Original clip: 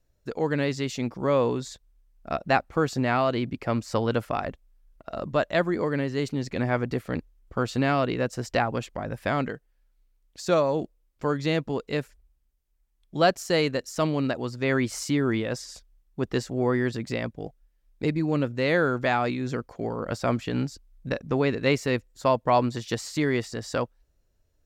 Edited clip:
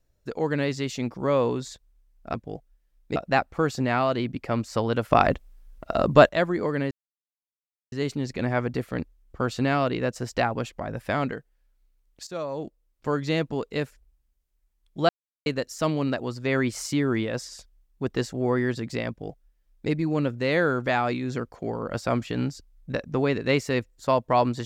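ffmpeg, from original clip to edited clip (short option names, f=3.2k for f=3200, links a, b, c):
-filter_complex "[0:a]asplit=9[a][b][c][d][e][f][g][h][i];[a]atrim=end=2.342[j];[b]atrim=start=17.248:end=18.072[k];[c]atrim=start=2.338:end=4.292[l];[d]atrim=start=4.288:end=5.472,asetpts=PTS-STARTPTS,volume=10dB[m];[e]atrim=start=5.468:end=6.09,asetpts=PTS-STARTPTS,afade=t=out:st=0.618:d=0.004:c=hsin,apad=pad_dur=1.01[n];[f]atrim=start=6.09:end=10.44,asetpts=PTS-STARTPTS,afade=t=in:d=0.004:c=hsin,afade=t=out:st=4.346:d=0.004:c=hsin:silence=0.177828[o];[g]atrim=start=10.44:end=13.26,asetpts=PTS-STARTPTS,afade=t=in:d=0.81:silence=0.177828,afade=t=out:st=2.816:d=0.004:c=hsin[p];[h]atrim=start=13.26:end=13.63,asetpts=PTS-STARTPTS,volume=0[q];[i]atrim=start=13.63,asetpts=PTS-STARTPTS,afade=t=in:d=0.004:c=hsin[r];[j][k]acrossfade=d=0.004:c1=hsin:c2=hsin[s];[s][l]acrossfade=d=0.004:c1=hsin:c2=hsin[t];[t][m]acrossfade=d=0.004:c1=hsin:c2=hsin[u];[n][o][p][q][r]concat=n=5:v=0:a=1[v];[u][v]acrossfade=d=0.004:c1=hsin:c2=hsin"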